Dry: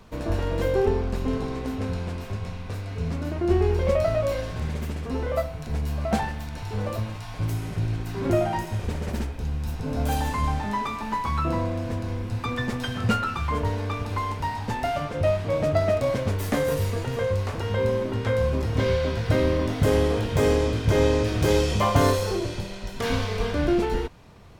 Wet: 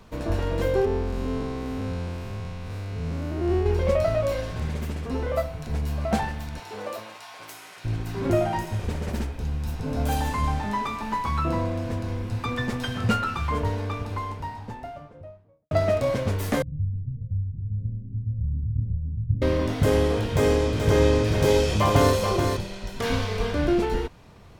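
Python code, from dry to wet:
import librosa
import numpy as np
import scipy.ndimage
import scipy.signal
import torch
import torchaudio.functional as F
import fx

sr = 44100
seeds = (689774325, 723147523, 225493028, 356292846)

y = fx.spec_blur(x, sr, span_ms=160.0, at=(0.85, 3.66))
y = fx.highpass(y, sr, hz=fx.line((6.59, 290.0), (7.84, 1100.0)), slope=12, at=(6.59, 7.84), fade=0.02)
y = fx.studio_fade_out(y, sr, start_s=13.47, length_s=2.24)
y = fx.cheby2_lowpass(y, sr, hz=980.0, order=4, stop_db=80, at=(16.62, 19.42))
y = fx.echo_single(y, sr, ms=430, db=-6.0, at=(20.33, 22.57))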